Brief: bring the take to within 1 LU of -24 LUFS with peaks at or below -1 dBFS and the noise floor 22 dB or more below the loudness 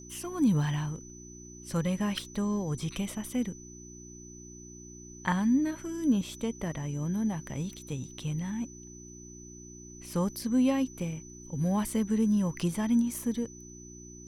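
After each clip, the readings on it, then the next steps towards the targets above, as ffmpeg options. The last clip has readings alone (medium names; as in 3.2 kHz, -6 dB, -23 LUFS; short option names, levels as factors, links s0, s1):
hum 60 Hz; highest harmonic 360 Hz; hum level -49 dBFS; steady tone 6 kHz; tone level -49 dBFS; loudness -31.0 LUFS; peak level -12.5 dBFS; loudness target -24.0 LUFS
-> -af "bandreject=f=60:t=h:w=4,bandreject=f=120:t=h:w=4,bandreject=f=180:t=h:w=4,bandreject=f=240:t=h:w=4,bandreject=f=300:t=h:w=4,bandreject=f=360:t=h:w=4"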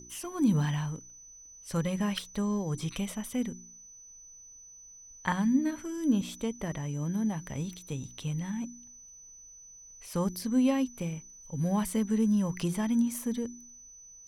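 hum not found; steady tone 6 kHz; tone level -49 dBFS
-> -af "bandreject=f=6000:w=30"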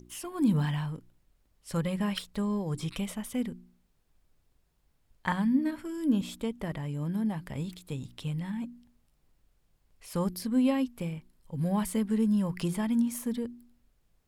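steady tone not found; loudness -31.0 LUFS; peak level -12.5 dBFS; loudness target -24.0 LUFS
-> -af "volume=2.24"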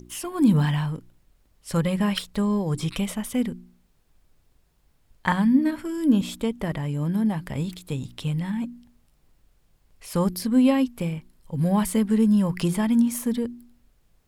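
loudness -24.5 LUFS; peak level -5.5 dBFS; noise floor -64 dBFS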